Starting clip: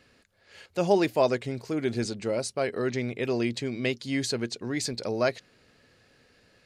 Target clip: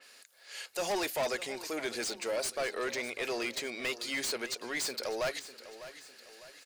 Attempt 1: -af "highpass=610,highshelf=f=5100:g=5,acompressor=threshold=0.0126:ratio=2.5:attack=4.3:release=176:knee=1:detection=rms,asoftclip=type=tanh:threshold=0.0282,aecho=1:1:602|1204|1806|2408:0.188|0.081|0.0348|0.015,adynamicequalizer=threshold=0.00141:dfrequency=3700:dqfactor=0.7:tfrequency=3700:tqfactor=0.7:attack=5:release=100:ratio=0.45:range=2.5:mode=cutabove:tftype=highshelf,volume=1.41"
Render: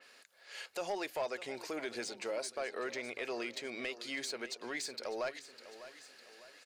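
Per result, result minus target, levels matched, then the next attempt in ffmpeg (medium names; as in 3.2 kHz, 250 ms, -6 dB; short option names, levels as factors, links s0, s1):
compression: peak gain reduction +13 dB; 8 kHz band -2.5 dB
-af "highpass=610,highshelf=f=5100:g=5,asoftclip=type=tanh:threshold=0.0282,aecho=1:1:602|1204|1806|2408:0.188|0.081|0.0348|0.015,adynamicequalizer=threshold=0.00141:dfrequency=3700:dqfactor=0.7:tfrequency=3700:tqfactor=0.7:attack=5:release=100:ratio=0.45:range=2.5:mode=cutabove:tftype=highshelf,volume=1.41"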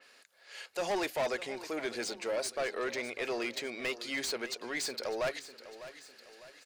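8 kHz band -3.0 dB
-af "highpass=610,highshelf=f=5100:g=17,asoftclip=type=tanh:threshold=0.0282,aecho=1:1:602|1204|1806|2408:0.188|0.081|0.0348|0.015,adynamicequalizer=threshold=0.00141:dfrequency=3700:dqfactor=0.7:tfrequency=3700:tqfactor=0.7:attack=5:release=100:ratio=0.45:range=2.5:mode=cutabove:tftype=highshelf,volume=1.41"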